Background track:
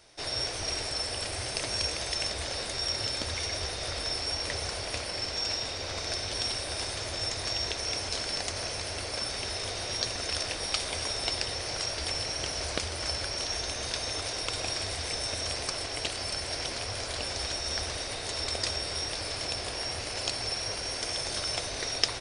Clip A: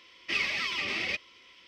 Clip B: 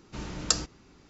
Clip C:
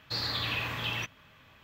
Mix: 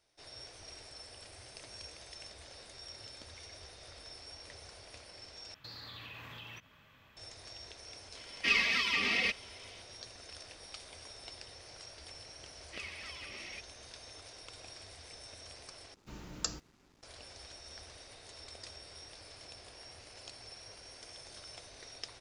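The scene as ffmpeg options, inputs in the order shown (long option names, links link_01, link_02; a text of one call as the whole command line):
ffmpeg -i bed.wav -i cue0.wav -i cue1.wav -i cue2.wav -filter_complex "[1:a]asplit=2[link_01][link_02];[0:a]volume=-18dB[link_03];[3:a]acompressor=threshold=-41dB:ratio=6:attack=3.2:release=140:knee=1:detection=peak[link_04];[link_01]aecho=1:1:4.3:0.8[link_05];[2:a]acrusher=bits=8:mix=0:aa=0.5[link_06];[link_03]asplit=3[link_07][link_08][link_09];[link_07]atrim=end=5.544[link_10];[link_04]atrim=end=1.63,asetpts=PTS-STARTPTS,volume=-4.5dB[link_11];[link_08]atrim=start=7.166:end=15.944[link_12];[link_06]atrim=end=1.09,asetpts=PTS-STARTPTS,volume=-10.5dB[link_13];[link_09]atrim=start=17.026[link_14];[link_05]atrim=end=1.67,asetpts=PTS-STARTPTS,volume=-1dB,afade=type=in:duration=0.004:curve=hsin,afade=type=out:start_time=1.666:duration=0.004:curve=hsin,adelay=8150[link_15];[link_02]atrim=end=1.67,asetpts=PTS-STARTPTS,volume=-16dB,afade=type=in:duration=0.004:curve=hsin,afade=type=out:start_time=1.666:duration=0.004:curve=hsin,adelay=12440[link_16];[link_10][link_11]acrossfade=duration=0.004:curve1=hsin:curve2=hsin[link_17];[link_17][link_12]acrossfade=duration=0.004:curve1=hsin:curve2=hsin[link_18];[link_18][link_13]acrossfade=duration=0.004:curve1=hsin:curve2=hsin[link_19];[link_19][link_14]acrossfade=duration=0.004:curve1=hsin:curve2=hsin[link_20];[link_20][link_15][link_16]amix=inputs=3:normalize=0" out.wav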